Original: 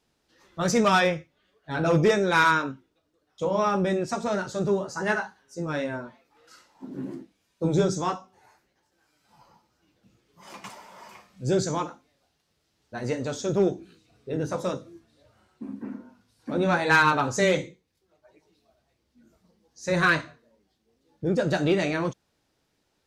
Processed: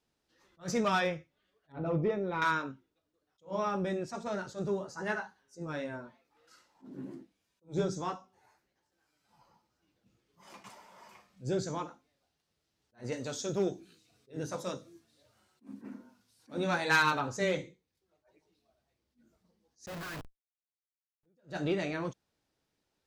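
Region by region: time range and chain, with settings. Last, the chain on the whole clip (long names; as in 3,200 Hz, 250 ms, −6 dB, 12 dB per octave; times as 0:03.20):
0:01.72–0:02.42: head-to-tape spacing loss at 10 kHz 38 dB + notch filter 1,600 Hz, Q 5.3 + one half of a high-frequency compander decoder only
0:13.12–0:17.19: high-pass filter 83 Hz + high-shelf EQ 3,300 Hz +11 dB
0:19.86–0:21.26: high-shelf EQ 7,700 Hz +3.5 dB + downward compressor 4 to 1, threshold −22 dBFS + comparator with hysteresis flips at −33 dBFS
whole clip: dynamic equaliser 9,100 Hz, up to −4 dB, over −47 dBFS, Q 1; level that may rise only so fast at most 280 dB per second; level −8.5 dB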